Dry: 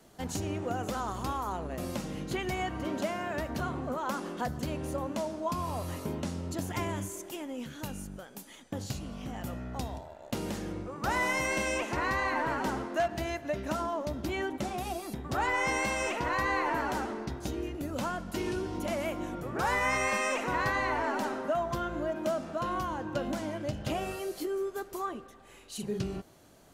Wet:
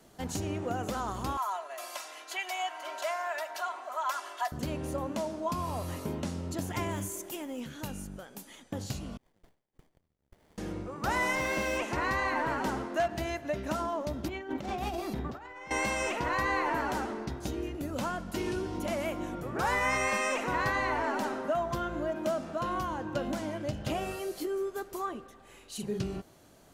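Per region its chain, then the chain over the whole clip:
1.37–4.52 HPF 690 Hz 24 dB/oct + comb 3 ms, depth 89%
6.91–7.6 high shelf 11000 Hz +9 dB + short-mantissa float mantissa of 4-bit
9.17–10.58 inverse Chebyshev high-pass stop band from 1700 Hz, stop band 80 dB + compressor 4:1, threshold -54 dBFS + running maximum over 33 samples
11.35–11.78 delta modulation 64 kbps, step -43 dBFS + running maximum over 3 samples
14.28–15.71 bell 10000 Hz -12 dB 1.1 oct + doubler 49 ms -11.5 dB + negative-ratio compressor -36 dBFS, ratio -0.5
whole clip: dry

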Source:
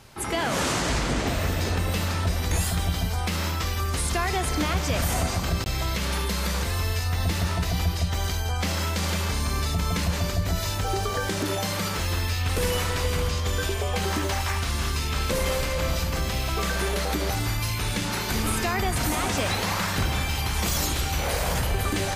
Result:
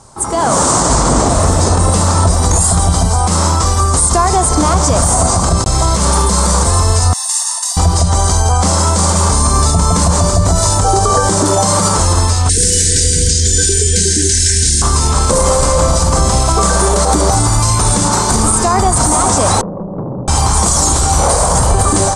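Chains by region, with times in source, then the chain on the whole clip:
7.13–7.77 HPF 760 Hz 24 dB/oct + differentiator + comb 1.1 ms, depth 78%
12.49–14.82 brick-wall FIR band-stop 490–1500 Hz + bell 5800 Hz +8.5 dB 2.4 oct
19.61–20.28 Chebyshev band-pass 120–570 Hz, order 4 + tube stage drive 33 dB, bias 0.65
whole clip: EQ curve 410 Hz 0 dB, 1100 Hz +6 dB, 1700 Hz -9 dB, 2600 Hz -15 dB, 8900 Hz +12 dB, 13000 Hz -23 dB; AGC gain up to 9.5 dB; maximiser +8 dB; gain -1 dB

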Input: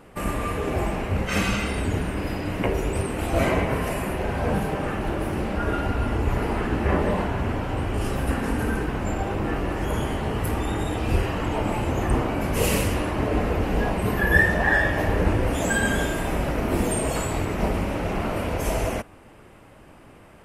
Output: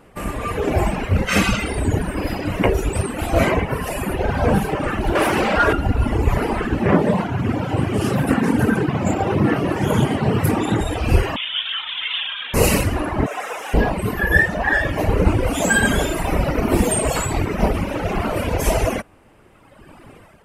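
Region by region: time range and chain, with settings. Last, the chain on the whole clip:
5.15–5.73 high shelf 5700 Hz +5 dB + overdrive pedal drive 15 dB, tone 4300 Hz, clips at -13 dBFS
6.82–10.81 HPF 120 Hz 24 dB/oct + low shelf 200 Hz +11 dB + Doppler distortion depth 0.18 ms
11.36–12.54 HPF 660 Hz + inverted band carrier 3900 Hz
13.26–13.74 delta modulation 64 kbps, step -34 dBFS + HPF 730 Hz + bell 4400 Hz -10.5 dB 0.22 oct
whole clip: reverb removal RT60 1.9 s; AGC gain up to 9.5 dB

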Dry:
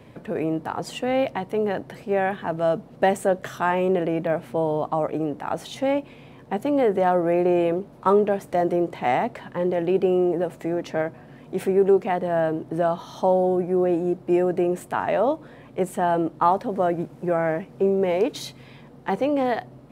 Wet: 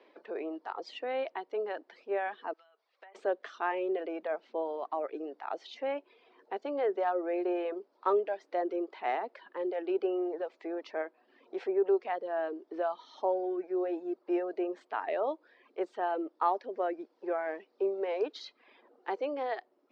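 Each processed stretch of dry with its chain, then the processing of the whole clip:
2.53–3.15 HPF 1200 Hz + treble ducked by the level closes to 1700 Hz, closed at -23.5 dBFS + compressor 12:1, threshold -40 dBFS
whole clip: reverb removal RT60 0.73 s; elliptic band-pass 350–4900 Hz, stop band 40 dB; gain -8.5 dB

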